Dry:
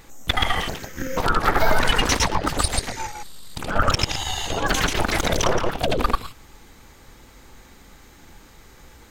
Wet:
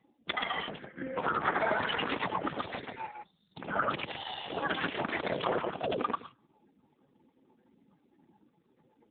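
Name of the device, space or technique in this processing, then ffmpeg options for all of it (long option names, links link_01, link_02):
mobile call with aggressive noise cancelling: -af "highpass=frequency=140:width=0.5412,highpass=frequency=140:width=1.3066,afftdn=noise_reduction=34:noise_floor=-44,volume=-7.5dB" -ar 8000 -c:a libopencore_amrnb -b:a 7950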